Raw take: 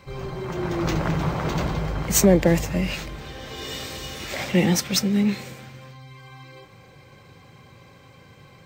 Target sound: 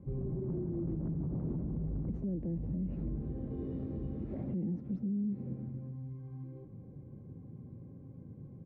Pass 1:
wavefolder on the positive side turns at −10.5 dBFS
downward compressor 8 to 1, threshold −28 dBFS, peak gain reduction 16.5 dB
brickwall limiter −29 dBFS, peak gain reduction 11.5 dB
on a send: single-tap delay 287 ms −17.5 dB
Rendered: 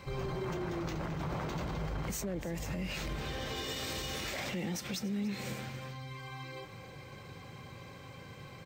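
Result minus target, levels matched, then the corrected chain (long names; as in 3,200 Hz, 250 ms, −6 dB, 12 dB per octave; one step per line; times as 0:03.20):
echo-to-direct +10 dB; 250 Hz band −3.0 dB
wavefolder on the positive side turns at −10.5 dBFS
downward compressor 8 to 1, threshold −28 dBFS, peak gain reduction 16.5 dB
low-pass with resonance 260 Hz, resonance Q 1.7
brickwall limiter −29 dBFS, peak gain reduction 11.5 dB
on a send: single-tap delay 287 ms −27.5 dB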